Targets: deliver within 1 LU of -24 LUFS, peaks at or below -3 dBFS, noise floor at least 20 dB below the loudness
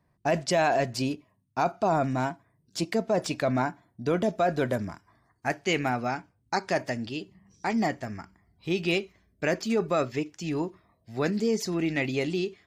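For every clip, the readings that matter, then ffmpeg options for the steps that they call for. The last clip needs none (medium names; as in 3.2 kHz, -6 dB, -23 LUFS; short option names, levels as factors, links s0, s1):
loudness -28.5 LUFS; peak level -12.0 dBFS; loudness target -24.0 LUFS
-> -af "volume=1.68"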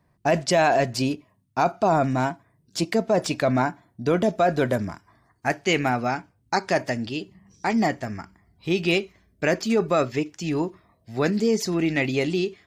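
loudness -24.0 LUFS; peak level -7.5 dBFS; noise floor -66 dBFS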